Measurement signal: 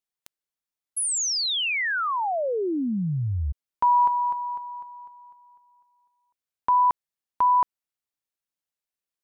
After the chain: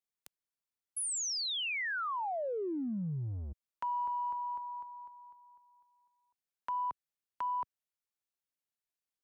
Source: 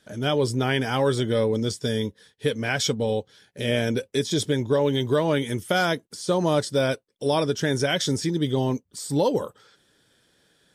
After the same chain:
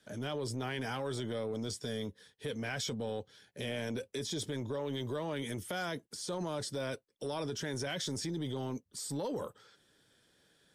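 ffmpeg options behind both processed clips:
-filter_complex "[0:a]acrossover=split=110|500|6500[a][b][c][d];[a]asoftclip=type=tanh:threshold=-39.5dB[e];[e][b][c][d]amix=inputs=4:normalize=0,acompressor=threshold=-28dB:ratio=6:attack=1:release=26:knee=6:detection=peak,volume=-5.5dB"

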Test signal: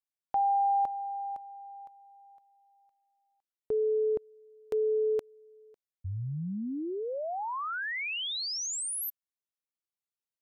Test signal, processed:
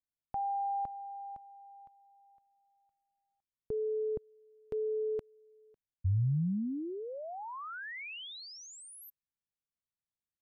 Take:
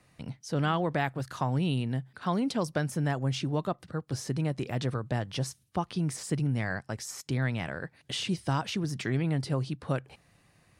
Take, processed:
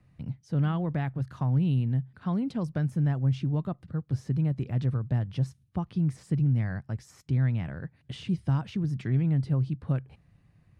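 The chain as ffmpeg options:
-af "bass=f=250:g=15,treble=f=4k:g=-9,volume=-8dB"

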